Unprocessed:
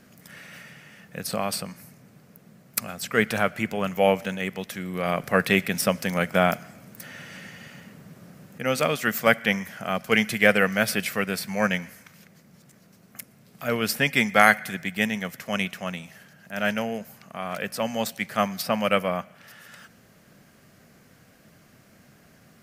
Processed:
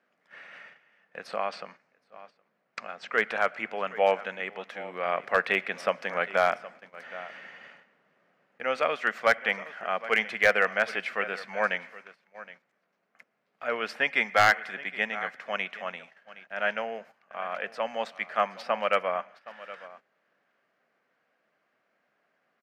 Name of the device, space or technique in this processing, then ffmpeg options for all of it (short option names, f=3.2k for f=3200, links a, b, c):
walkie-talkie: -filter_complex "[0:a]asettb=1/sr,asplit=3[a][b][c];[a]atrim=end=1.364[d];[b]atrim=start=1.36:end=3.12,asetpts=PTS-STARTPTS,afade=t=in:d=0.004:c=qsin,afade=t=out:st=1.756:d=0.004:c=qsin,lowpass=f=7.2k:w=0.5412,lowpass=f=7.2k:w=1.3066[e];[c]atrim=start=3.116[f];[d][e]acrossfade=d=0.004:c1=hsin:c2=qsin[g];[g][f]acrossfade=d=0.004:c1=qsin:c2=hsin,highpass=560,lowpass=2.3k,aecho=1:1:768:0.133,asoftclip=type=hard:threshold=-11.5dB,agate=range=-12dB:threshold=-49dB:ratio=16:detection=peak"